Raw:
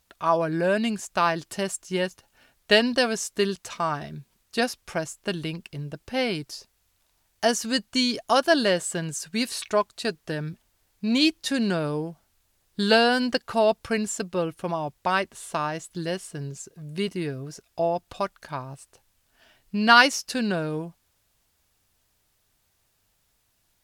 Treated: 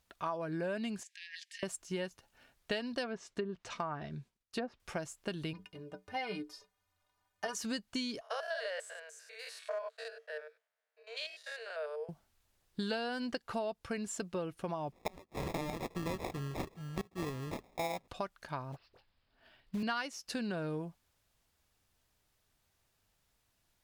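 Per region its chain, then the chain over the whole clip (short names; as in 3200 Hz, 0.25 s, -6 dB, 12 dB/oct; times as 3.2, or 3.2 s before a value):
1.03–1.63 brick-wall FIR high-pass 1600 Hz + negative-ratio compressor -41 dBFS + air absorption 65 m
3.03–4.8 treble ducked by the level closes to 890 Hz, closed at -19.5 dBFS + expander -59 dBFS
5.53–7.55 bell 990 Hz +9.5 dB 2.4 oct + metallic resonator 89 Hz, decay 0.25 s, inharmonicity 0.03
8.21–12.09 stepped spectrum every 0.1 s + rippled Chebyshev high-pass 440 Hz, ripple 9 dB + mismatched tape noise reduction decoder only
14.92–18.08 high shelf 2400 Hz +11.5 dB + sample-rate reducer 1500 Hz + flipped gate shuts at -13 dBFS, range -25 dB
18.72–19.83 steep low-pass 5100 Hz 96 dB/oct + dispersion highs, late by 44 ms, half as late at 1000 Hz + short-mantissa float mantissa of 2-bit
whole clip: high shelf 5900 Hz -5.5 dB; compressor 6:1, threshold -29 dBFS; gain -5 dB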